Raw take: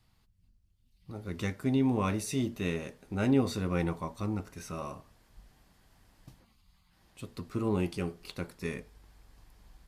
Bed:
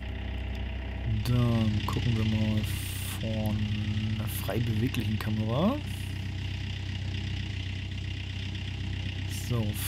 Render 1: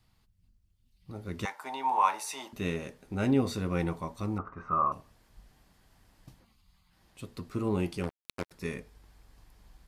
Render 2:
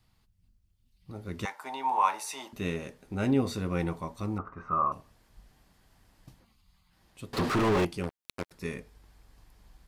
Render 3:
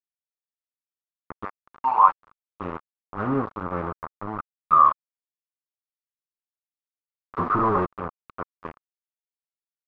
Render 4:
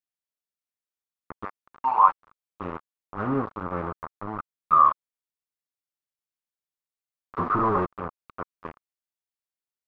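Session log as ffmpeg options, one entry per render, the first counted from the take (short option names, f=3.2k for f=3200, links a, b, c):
-filter_complex "[0:a]asettb=1/sr,asplit=3[a][b][c];[a]atrim=end=1.454[d];[b]atrim=start=1.45:end=2.53,asetpts=PTS-STARTPTS,afade=t=in:d=0.004:c=qsin,afade=t=out:st=1.076:d=0.004:c=qsin,highpass=f=890:t=q:w=11[e];[c]atrim=start=2.526[f];[d][e]acrossfade=d=0.004:c1=hsin:c2=qsin[g];[g][f]acrossfade=d=0.004:c1=qsin:c2=hsin,asettb=1/sr,asplit=3[h][i][j];[h]atrim=end=4.384[k];[i]atrim=start=4.38:end=4.92,asetpts=PTS-STARTPTS,afade=t=in:d=0.004:c=qsin,afade=t=out:st=0.536:d=0.004:c=qsin,lowpass=f=1.2k:t=q:w=12[l];[j]atrim=start=4.916[m];[k][l]acrossfade=d=0.004:c1=hsin:c2=qsin[n];[n][m]acrossfade=d=0.004:c1=qsin:c2=hsin,asettb=1/sr,asplit=3[o][p][q];[o]atrim=end=8.034[r];[p]atrim=start=8.03:end=8.51,asetpts=PTS-STARTPTS,afade=t=in:d=0.004:c=qsin,afade=t=out:st=0.476:d=0.004:c=qsin,acrusher=bits=4:mix=0:aa=0.5[s];[q]atrim=start=8.506[t];[r][s]acrossfade=d=0.004:c1=hsin:c2=qsin[u];[u][t]acrossfade=d=0.004:c1=qsin:c2=hsin"
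-filter_complex "[0:a]asettb=1/sr,asplit=3[a][b][c];[a]atrim=end=7.334[d];[b]atrim=start=7.33:end=7.85,asetpts=PTS-STARTPTS,afade=t=in:d=0.004:c=qsin,afade=t=out:st=0.516:d=0.004:c=qsin,asplit=2[e][f];[f]highpass=f=720:p=1,volume=42dB,asoftclip=type=tanh:threshold=-18.5dB[g];[e][g]amix=inputs=2:normalize=0,lowpass=f=1.9k:p=1,volume=-6dB[h];[c]atrim=start=7.846[i];[d][h]acrossfade=d=0.004:c1=hsin:c2=qsin[j];[j][i]acrossfade=d=0.004:c1=qsin:c2=hsin"
-af "aeval=exprs='val(0)*gte(abs(val(0)),0.0376)':c=same,lowpass=f=1.2k:t=q:w=4.9"
-af "volume=-1.5dB"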